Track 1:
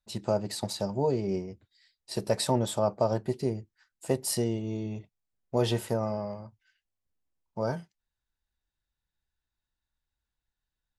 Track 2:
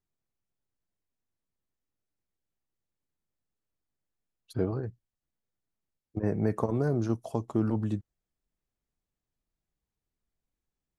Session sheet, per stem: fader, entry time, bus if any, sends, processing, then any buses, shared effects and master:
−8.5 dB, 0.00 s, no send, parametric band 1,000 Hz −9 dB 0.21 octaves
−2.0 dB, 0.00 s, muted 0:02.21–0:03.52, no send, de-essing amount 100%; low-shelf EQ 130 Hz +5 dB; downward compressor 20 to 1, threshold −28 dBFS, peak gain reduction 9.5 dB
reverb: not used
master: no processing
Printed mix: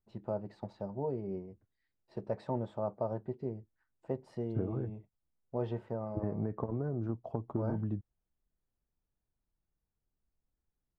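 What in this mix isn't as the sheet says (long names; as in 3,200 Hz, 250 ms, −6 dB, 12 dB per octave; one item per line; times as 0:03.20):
stem 1: missing parametric band 1,000 Hz −9 dB 0.21 octaves
master: extra low-pass filter 1,300 Hz 12 dB per octave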